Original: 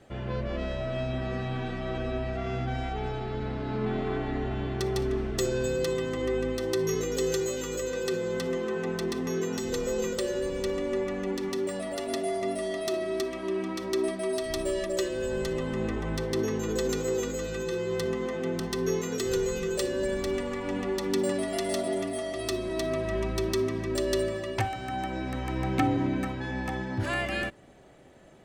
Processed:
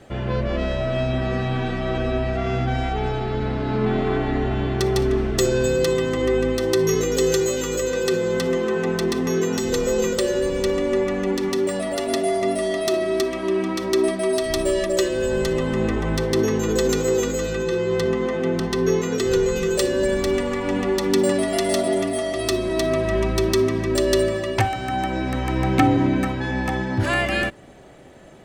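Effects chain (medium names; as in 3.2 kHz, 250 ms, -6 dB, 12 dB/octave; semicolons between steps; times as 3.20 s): 17.53–19.56 s: treble shelf 6.7 kHz -9.5 dB; trim +8.5 dB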